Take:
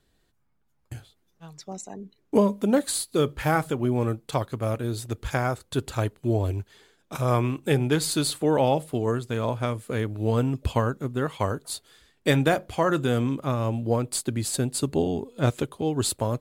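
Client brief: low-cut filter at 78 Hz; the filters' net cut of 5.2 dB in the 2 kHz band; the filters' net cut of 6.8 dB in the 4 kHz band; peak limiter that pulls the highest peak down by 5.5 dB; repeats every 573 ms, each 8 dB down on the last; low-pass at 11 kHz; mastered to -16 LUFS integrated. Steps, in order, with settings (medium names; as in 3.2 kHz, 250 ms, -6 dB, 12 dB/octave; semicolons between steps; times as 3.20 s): high-pass 78 Hz; low-pass 11 kHz; peaking EQ 2 kHz -6 dB; peaking EQ 4 kHz -6.5 dB; peak limiter -14 dBFS; feedback delay 573 ms, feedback 40%, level -8 dB; trim +11 dB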